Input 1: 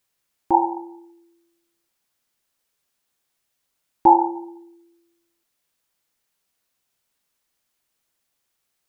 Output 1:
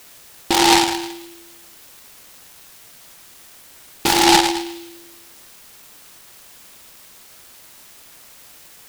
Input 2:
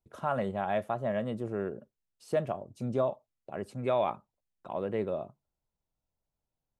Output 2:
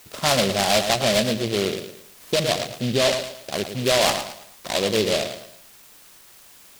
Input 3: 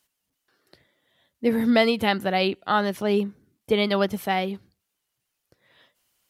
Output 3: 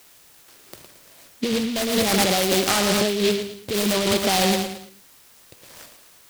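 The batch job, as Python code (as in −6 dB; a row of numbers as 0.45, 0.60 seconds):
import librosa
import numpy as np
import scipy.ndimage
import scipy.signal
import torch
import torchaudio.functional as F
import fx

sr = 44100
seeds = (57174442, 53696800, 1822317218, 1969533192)

y = fx.air_absorb(x, sr, metres=120.0)
y = fx.echo_feedback(y, sr, ms=111, feedback_pct=36, wet_db=-9)
y = np.clip(y, -10.0 ** (-15.0 / 20.0), 10.0 ** (-15.0 / 20.0))
y = fx.notch(y, sr, hz=870.0, q=12.0)
y = fx.over_compress(y, sr, threshold_db=-28.0, ratio=-1.0)
y = fx.dmg_noise_colour(y, sr, seeds[0], colour='violet', level_db=-59.0)
y = fx.low_shelf(y, sr, hz=480.0, db=-5.5)
y = fx.fold_sine(y, sr, drive_db=6, ceiling_db=-13.5)
y = fx.noise_mod_delay(y, sr, seeds[1], noise_hz=3200.0, depth_ms=0.16)
y = y * 10.0 ** (-24 / 20.0) / np.sqrt(np.mean(np.square(y)))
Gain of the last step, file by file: +8.0, +4.0, +1.0 decibels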